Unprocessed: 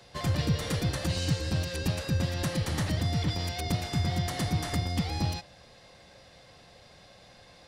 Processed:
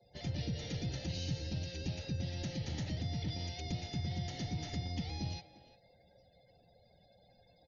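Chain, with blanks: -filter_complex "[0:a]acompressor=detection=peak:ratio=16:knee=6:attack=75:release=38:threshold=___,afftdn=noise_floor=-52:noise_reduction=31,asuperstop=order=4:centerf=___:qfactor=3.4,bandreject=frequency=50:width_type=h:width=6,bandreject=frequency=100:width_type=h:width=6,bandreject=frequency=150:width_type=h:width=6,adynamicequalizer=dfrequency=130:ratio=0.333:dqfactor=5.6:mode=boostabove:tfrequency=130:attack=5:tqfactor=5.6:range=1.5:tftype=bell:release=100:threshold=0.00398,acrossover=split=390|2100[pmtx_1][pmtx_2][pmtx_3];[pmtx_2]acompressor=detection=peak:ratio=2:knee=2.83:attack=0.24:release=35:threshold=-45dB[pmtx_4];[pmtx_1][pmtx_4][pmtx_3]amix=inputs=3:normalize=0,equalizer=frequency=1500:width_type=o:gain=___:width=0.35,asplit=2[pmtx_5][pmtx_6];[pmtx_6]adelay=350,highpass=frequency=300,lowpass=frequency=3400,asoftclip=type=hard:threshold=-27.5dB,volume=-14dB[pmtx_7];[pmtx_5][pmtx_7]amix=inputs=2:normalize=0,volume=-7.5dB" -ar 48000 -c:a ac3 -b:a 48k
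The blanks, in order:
-30dB, 1100, -9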